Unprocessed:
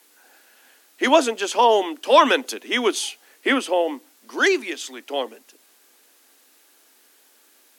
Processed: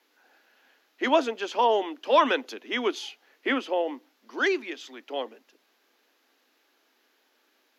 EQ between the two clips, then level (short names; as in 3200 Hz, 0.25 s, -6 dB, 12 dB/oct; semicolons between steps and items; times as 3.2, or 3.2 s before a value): running mean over 5 samples; -6.0 dB